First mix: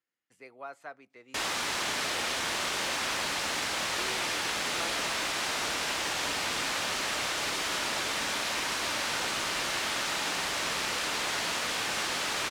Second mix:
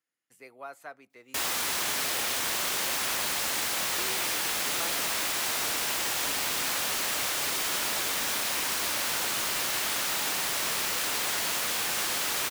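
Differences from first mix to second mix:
background: send −11.0 dB
master: remove high-frequency loss of the air 65 metres

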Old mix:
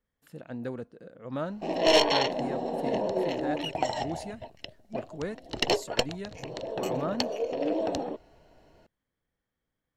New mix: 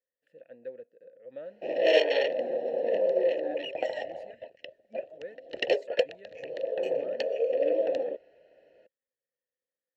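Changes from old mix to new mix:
background +9.5 dB
master: add formant filter e

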